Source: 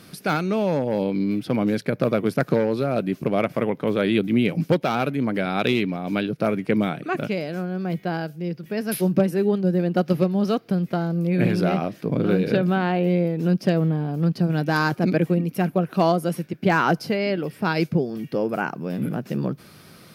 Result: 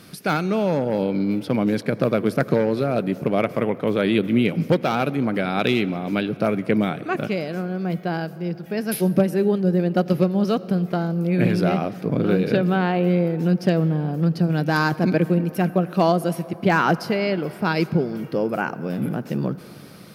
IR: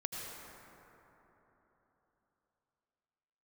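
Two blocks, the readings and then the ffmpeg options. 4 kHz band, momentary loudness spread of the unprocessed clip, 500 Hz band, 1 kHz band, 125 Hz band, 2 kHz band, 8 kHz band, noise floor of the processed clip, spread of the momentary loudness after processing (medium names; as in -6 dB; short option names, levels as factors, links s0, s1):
+1.0 dB, 7 LU, +1.0 dB, +1.0 dB, +1.0 dB, +1.0 dB, +1.0 dB, -39 dBFS, 7 LU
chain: -filter_complex "[0:a]asplit=2[s0][s1];[1:a]atrim=start_sample=2205[s2];[s1][s2]afir=irnorm=-1:irlink=0,volume=0.168[s3];[s0][s3]amix=inputs=2:normalize=0"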